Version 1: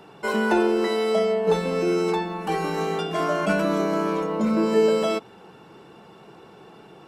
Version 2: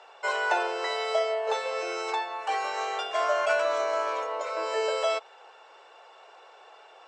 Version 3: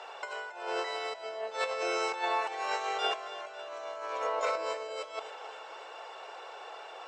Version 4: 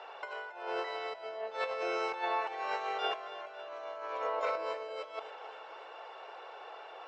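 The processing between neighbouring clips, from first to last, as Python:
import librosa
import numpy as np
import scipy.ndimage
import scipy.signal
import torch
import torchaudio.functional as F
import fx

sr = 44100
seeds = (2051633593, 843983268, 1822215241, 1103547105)

y1 = scipy.signal.sosfilt(scipy.signal.ellip(3, 1.0, 40, [570.0, 7500.0], 'bandpass', fs=sr, output='sos'), x)
y2 = fx.over_compress(y1, sr, threshold_db=-34.0, ratio=-0.5)
y2 = fx.echo_feedback(y2, sr, ms=274, feedback_pct=59, wet_db=-13.5)
y3 = fx.air_absorb(y2, sr, metres=170.0)
y3 = y3 * librosa.db_to_amplitude(-1.5)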